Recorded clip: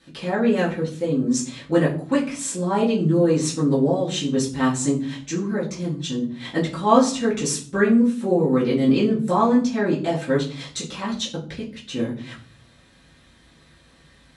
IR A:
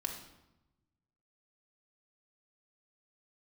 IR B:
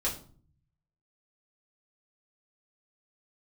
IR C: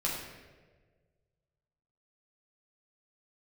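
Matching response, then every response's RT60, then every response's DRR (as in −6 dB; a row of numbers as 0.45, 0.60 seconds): B; 0.95, 0.45, 1.5 seconds; 1.0, −7.0, −5.5 decibels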